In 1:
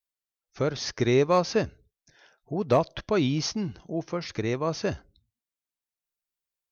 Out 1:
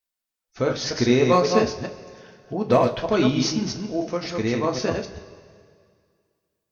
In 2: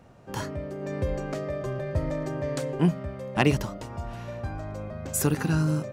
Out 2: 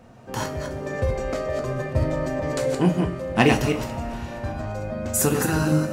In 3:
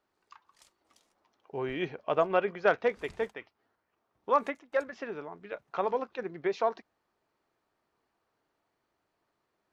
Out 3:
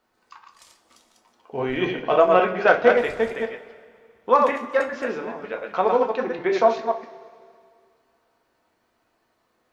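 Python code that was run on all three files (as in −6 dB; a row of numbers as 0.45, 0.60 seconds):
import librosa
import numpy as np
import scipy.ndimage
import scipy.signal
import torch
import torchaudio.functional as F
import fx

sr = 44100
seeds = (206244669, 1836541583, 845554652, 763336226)

y = fx.reverse_delay(x, sr, ms=133, wet_db=-4)
y = fx.rev_double_slope(y, sr, seeds[0], early_s=0.24, late_s=2.1, knee_db=-18, drr_db=3.0)
y = y * 10.0 ** (-24 / 20.0) / np.sqrt(np.mean(np.square(y)))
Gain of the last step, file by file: +2.0, +3.0, +7.5 decibels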